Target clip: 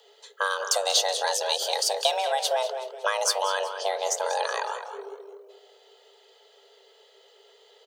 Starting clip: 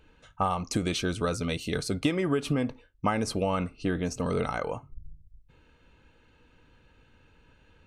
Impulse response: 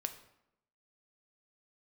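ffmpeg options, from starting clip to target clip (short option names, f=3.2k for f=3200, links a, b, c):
-filter_complex "[0:a]asplit=2[a][b];[b]adelay=211,lowpass=f=1.7k:p=1,volume=-8dB,asplit=2[c][d];[d]adelay=211,lowpass=f=1.7k:p=1,volume=0.3,asplit=2[e][f];[f]adelay=211,lowpass=f=1.7k:p=1,volume=0.3,asplit=2[g][h];[h]adelay=211,lowpass=f=1.7k:p=1,volume=0.3[i];[c][e][g][i]amix=inputs=4:normalize=0[j];[a][j]amix=inputs=2:normalize=0,aexciter=amount=3:drive=8.8:freq=2.8k,asplit=2[k][l];[l]asplit=4[m][n][o][p];[m]adelay=187,afreqshift=-120,volume=-16dB[q];[n]adelay=374,afreqshift=-240,volume=-22.2dB[r];[o]adelay=561,afreqshift=-360,volume=-28.4dB[s];[p]adelay=748,afreqshift=-480,volume=-34.6dB[t];[q][r][s][t]amix=inputs=4:normalize=0[u];[k][u]amix=inputs=2:normalize=0,afreqshift=390,equalizer=f=10k:w=1.5:g=-10"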